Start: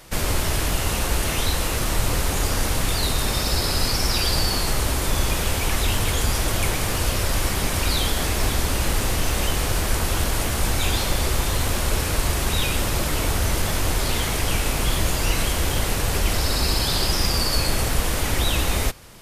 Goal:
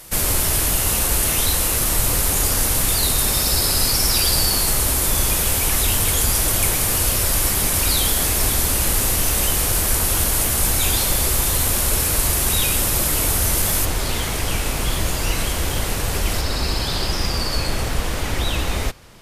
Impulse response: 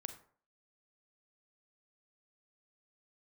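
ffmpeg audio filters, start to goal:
-af "asetnsamples=nb_out_samples=441:pad=0,asendcmd='13.85 equalizer g 2;16.41 equalizer g -5.5',equalizer=frequency=12000:width_type=o:width=1.3:gain=13"

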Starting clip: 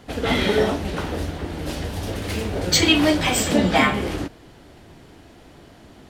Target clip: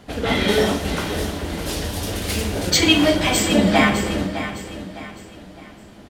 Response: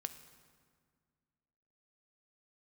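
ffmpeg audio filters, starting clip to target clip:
-filter_complex "[0:a]asettb=1/sr,asplit=3[link_01][link_02][link_03];[link_01]atrim=end=0.484[link_04];[link_02]atrim=start=0.48:end=2.7,asetpts=PTS-STARTPTS,afade=type=in:duration=0.004:curve=qsin,afade=type=out:start_time=2.216:duration=0.004:curve=qsin,highshelf=frequency=3800:gain=10[link_05];[link_03]atrim=start=2.696[link_06];[link_04][link_05]acrossfade=duration=0.004:curve1=hsin:curve2=qsin[link_07];[link_07][link_06]acrossfade=duration=0.004:curve1=qsin:curve2=hsin,aecho=1:1:608|1216|1824|2432:0.266|0.101|0.0384|0.0146[link_08];[1:a]atrim=start_sample=2205,asetrate=57330,aresample=44100[link_09];[link_08][link_09]afir=irnorm=-1:irlink=0,volume=5.5dB"

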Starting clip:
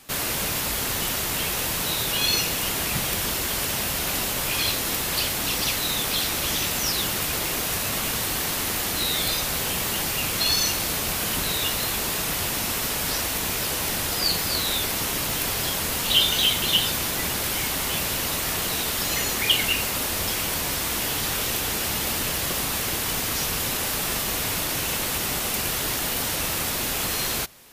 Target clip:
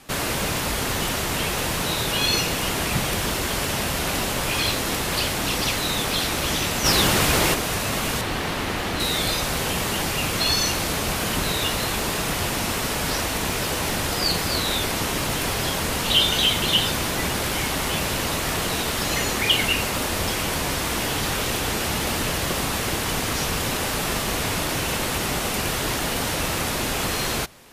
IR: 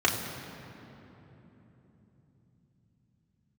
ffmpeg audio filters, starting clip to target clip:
-filter_complex "[0:a]lowpass=12000,asettb=1/sr,asplit=3[link_01][link_02][link_03];[link_01]atrim=end=8.214[link_04];[link_02]atrim=start=8.21:end=9,asetpts=PTS-STARTPTS,afade=type=in:duration=0.004:curve=qsin,afade=type=out:start_time=0.786:duration=0.004:curve=qsin,acrossover=split=4400[link_05][link_06];[link_06]acompressor=threshold=-38dB:ratio=4:attack=1:release=60[link_07];[link_05][link_07]amix=inputs=2:normalize=0[link_08];[link_03]atrim=start=8.996[link_09];[link_04][link_08]acrossfade=duration=0.004:curve1=hsin:curve2=qsin[link_10];[link_10][link_09]acrossfade=duration=0.004:curve1=qsin:curve2=hsin,highshelf=frequency=2400:gain=-6.5,asplit=3[link_11][link_12][link_13];[link_11]afade=type=out:start_time=6.84:duration=0.02[link_14];[link_12]acontrast=49,afade=type=in:start_time=6.84:duration=0.02,afade=type=out:start_time=7.53:duration=0.02[link_15];[link_13]afade=type=in:start_time=7.53:duration=0.02[link_16];[link_14][link_15][link_16]amix=inputs=3:normalize=0,asoftclip=type=tanh:threshold=-11dB,volume=5.5dB"

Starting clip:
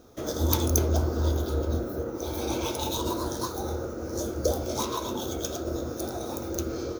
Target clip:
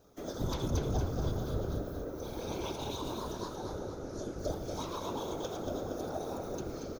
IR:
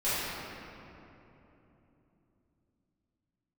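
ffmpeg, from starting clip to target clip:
-filter_complex "[0:a]acrossover=split=5300[link_01][link_02];[link_02]acompressor=threshold=-46dB:ratio=4:attack=1:release=60[link_03];[link_01][link_03]amix=inputs=2:normalize=0,asettb=1/sr,asplit=3[link_04][link_05][link_06];[link_04]atrim=end=3.334[link_07];[link_05]atrim=start=3.33:end=4.39,asetpts=PTS-STARTPTS,afade=type=in:duration=0.004:curve=qsin,afade=type=out:start_time=1.056:duration=0.004:curve=qsin,lowpass=8600[link_08];[link_06]atrim=start=4.386[link_09];[link_07][link_08]acrossfade=duration=0.004:curve1=hsin:curve2=qsin[link_10];[link_10][link_09]acrossfade=duration=0.004:curve1=qsin:curve2=hsin,asettb=1/sr,asplit=3[link_11][link_12][link_13];[link_11]atrim=end=5.034[link_14];[link_12]atrim=start=5.03:end=6.57,asetpts=PTS-STARTPTS,afade=type=in:duration=0.004:curve=qsin,afade=type=out:start_time=1.536:duration=0.004:curve=qsin,equalizer=frequency=720:width=1:gain=6[link_15];[link_13]atrim=start=6.566[link_16];[link_14][link_15]acrossfade=duration=0.004:curve1=hsin:curve2=qsin[link_17];[link_17][link_16]acrossfade=duration=0.004:curve1=qsin:curve2=hsin,afftfilt=real='hypot(re,im)*cos(2*PI*random(0))':imag='hypot(re,im)*sin(2*PI*random(1))':win_size=512:overlap=0.75,aecho=1:1:233|466|699|932|1165|1398:0.447|0.214|0.103|0.0494|0.0237|0.0114,volume=-2.5dB"

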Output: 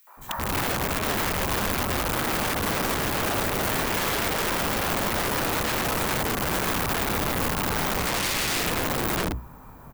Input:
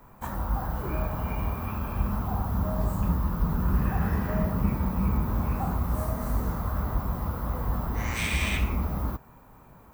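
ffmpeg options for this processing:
ffmpeg -i in.wav -filter_complex "[0:a]bandreject=frequency=60:width_type=h:width=6,bandreject=frequency=120:width_type=h:width=6,bandreject=frequency=180:width_type=h:width=6,bandreject=frequency=240:width_type=h:width=6,bandreject=frequency=300:width_type=h:width=6,bandreject=frequency=360:width_type=h:width=6,bandreject=frequency=420:width_type=h:width=6,bandreject=frequency=480:width_type=h:width=6,bandreject=frequency=540:width_type=h:width=6,acrossover=split=600|2600[link_01][link_02][link_03];[link_02]adelay=70[link_04];[link_01]adelay=170[link_05];[link_05][link_04][link_03]amix=inputs=3:normalize=0,acrossover=split=2500[link_06][link_07];[link_07]acompressor=threshold=-48dB:ratio=4:attack=1:release=60[link_08];[link_06][link_08]amix=inputs=2:normalize=0,aeval=exprs='(mod(28.2*val(0)+1,2)-1)/28.2':channel_layout=same,volume=8dB" out.wav

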